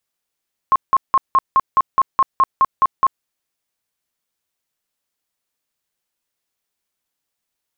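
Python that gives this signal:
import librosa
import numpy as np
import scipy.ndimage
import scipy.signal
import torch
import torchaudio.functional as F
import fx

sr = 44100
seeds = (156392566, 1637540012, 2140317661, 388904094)

y = fx.tone_burst(sr, hz=1070.0, cycles=40, every_s=0.21, bursts=12, level_db=-9.0)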